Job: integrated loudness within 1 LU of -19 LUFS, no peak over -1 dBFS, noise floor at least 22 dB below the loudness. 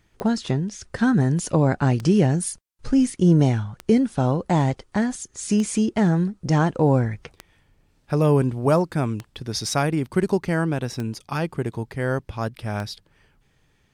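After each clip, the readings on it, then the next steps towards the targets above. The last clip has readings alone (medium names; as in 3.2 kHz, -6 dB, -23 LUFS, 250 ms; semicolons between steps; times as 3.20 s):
clicks found 8; loudness -22.5 LUFS; peak level -6.0 dBFS; loudness target -19.0 LUFS
-> de-click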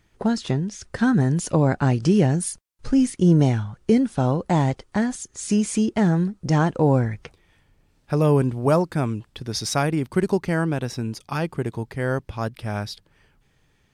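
clicks found 0; loudness -22.5 LUFS; peak level -6.0 dBFS; loudness target -19.0 LUFS
-> trim +3.5 dB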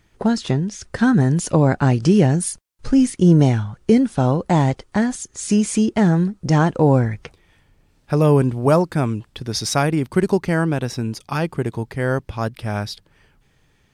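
loudness -19.0 LUFS; peak level -2.5 dBFS; noise floor -60 dBFS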